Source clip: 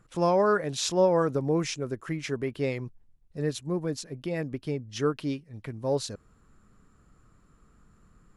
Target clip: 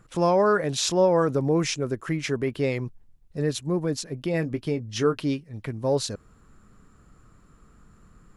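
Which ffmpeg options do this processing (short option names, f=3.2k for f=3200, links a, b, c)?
-filter_complex "[0:a]asplit=2[a][b];[b]alimiter=limit=-23dB:level=0:latency=1:release=17,volume=-1.5dB[c];[a][c]amix=inputs=2:normalize=0,asettb=1/sr,asplit=3[d][e][f];[d]atrim=end=4.324[g];[e]atrim=start=4.32:end=5.19,asetpts=PTS-STARTPTS,afade=t=in:d=0.004:c=qsin,afade=t=out:st=0.866:d=0.004:c=qsin,asplit=2[h][i];[i]adelay=18,volume=-10dB[j];[h][j]amix=inputs=2:normalize=0,atrim=end_sample=38367[k];[f]atrim=start=5.186[l];[g][k]acrossfade=d=0.004:c1=hsin:c2=qsin[m];[m][l]acrossfade=d=0.004:c1=qsin:c2=hsin"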